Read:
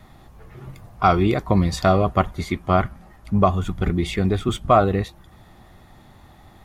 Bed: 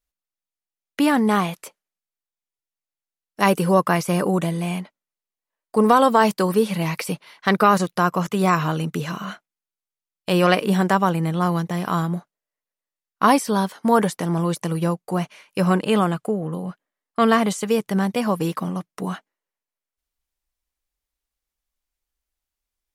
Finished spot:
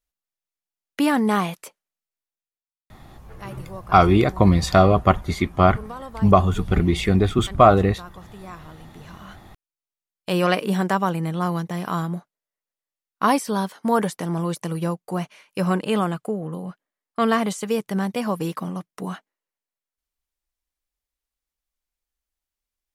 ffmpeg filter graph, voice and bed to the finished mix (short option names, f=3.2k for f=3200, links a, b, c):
-filter_complex "[0:a]adelay=2900,volume=2.5dB[a];[1:a]volume=16.5dB,afade=t=out:st=2.23:d=0.42:silence=0.105925,afade=t=in:st=8.95:d=1.03:silence=0.125893[b];[a][b]amix=inputs=2:normalize=0"